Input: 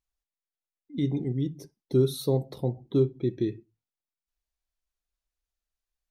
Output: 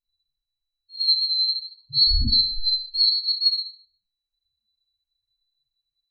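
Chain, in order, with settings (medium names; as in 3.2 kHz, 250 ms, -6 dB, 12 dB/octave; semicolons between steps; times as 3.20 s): split-band scrambler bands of 4 kHz; RIAA curve playback; loudest bins only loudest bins 2; Schroeder reverb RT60 0.48 s, combs from 28 ms, DRR -10 dB; trim +7 dB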